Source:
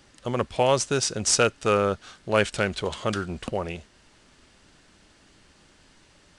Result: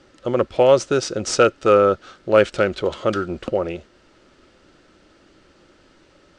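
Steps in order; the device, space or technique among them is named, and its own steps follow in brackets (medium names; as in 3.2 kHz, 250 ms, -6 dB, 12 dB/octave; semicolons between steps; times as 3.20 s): inside a cardboard box (low-pass 5.9 kHz 12 dB/octave; small resonant body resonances 350/520/1300 Hz, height 10 dB, ringing for 25 ms)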